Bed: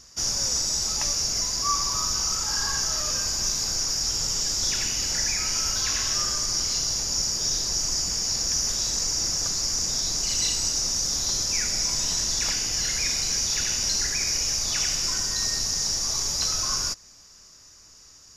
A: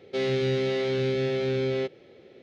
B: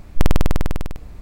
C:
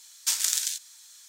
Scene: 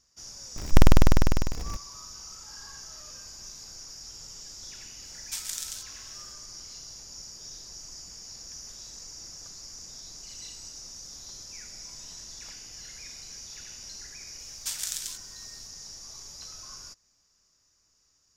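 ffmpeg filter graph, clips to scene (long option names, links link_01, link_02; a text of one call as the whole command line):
ffmpeg -i bed.wav -i cue0.wav -i cue1.wav -i cue2.wav -filter_complex "[3:a]asplit=2[link_01][link_02];[0:a]volume=-18dB[link_03];[2:a]aeval=exprs='val(0)+0.5*0.0211*sgn(val(0))':channel_layout=same,atrim=end=1.21,asetpts=PTS-STARTPTS,volume=-1dB,afade=type=in:duration=0.004:curve=hsin,afade=type=out:start_time=1.206:duration=0.004:curve=hsin,adelay=560[link_04];[link_01]atrim=end=1.28,asetpts=PTS-STARTPTS,volume=-9.5dB,afade=type=in:duration=0.004:curve=hsin,afade=type=out:start_time=1.276:duration=0.004:curve=hsin,adelay=222705S[link_05];[link_02]atrim=end=1.28,asetpts=PTS-STARTPTS,volume=-7.5dB,afade=type=in:duration=0.004:curve=hsin,afade=type=out:start_time=1.276:duration=0.004:curve=hsin,adelay=14390[link_06];[link_03][link_04][link_05][link_06]amix=inputs=4:normalize=0" out.wav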